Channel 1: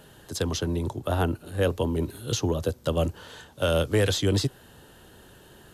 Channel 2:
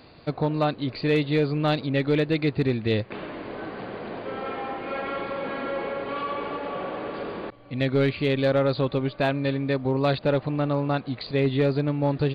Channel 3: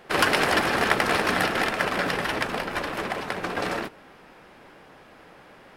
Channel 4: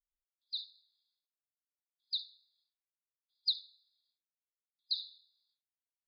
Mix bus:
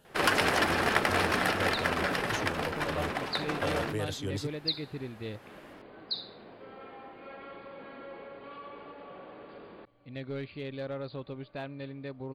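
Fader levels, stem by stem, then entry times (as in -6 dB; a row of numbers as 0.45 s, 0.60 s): -12.0 dB, -15.5 dB, -4.5 dB, +0.5 dB; 0.00 s, 2.35 s, 0.05 s, 1.20 s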